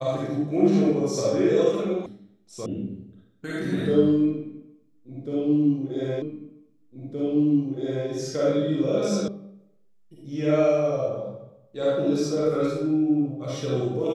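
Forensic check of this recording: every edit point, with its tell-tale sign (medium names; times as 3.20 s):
2.06 s: sound stops dead
2.66 s: sound stops dead
6.22 s: repeat of the last 1.87 s
9.28 s: sound stops dead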